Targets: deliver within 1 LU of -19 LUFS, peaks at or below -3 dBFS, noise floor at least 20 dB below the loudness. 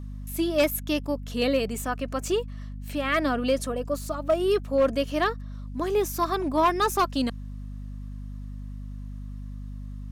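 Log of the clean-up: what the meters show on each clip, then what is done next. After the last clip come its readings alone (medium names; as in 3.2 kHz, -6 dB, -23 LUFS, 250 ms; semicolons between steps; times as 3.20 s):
clipped samples 0.4%; clipping level -15.0 dBFS; hum 50 Hz; highest harmonic 250 Hz; hum level -34 dBFS; loudness -26.0 LUFS; peak level -15.0 dBFS; loudness target -19.0 LUFS
-> clip repair -15 dBFS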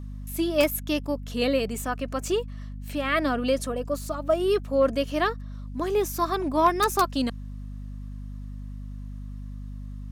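clipped samples 0.0%; hum 50 Hz; highest harmonic 250 Hz; hum level -34 dBFS
-> hum notches 50/100/150/200/250 Hz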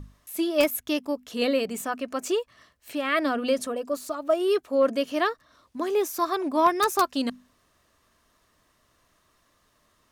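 hum not found; loudness -26.0 LUFS; peak level -5.5 dBFS; loudness target -19.0 LUFS
-> trim +7 dB; peak limiter -3 dBFS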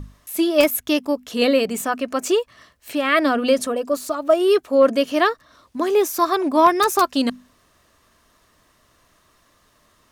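loudness -19.5 LUFS; peak level -3.0 dBFS; noise floor -60 dBFS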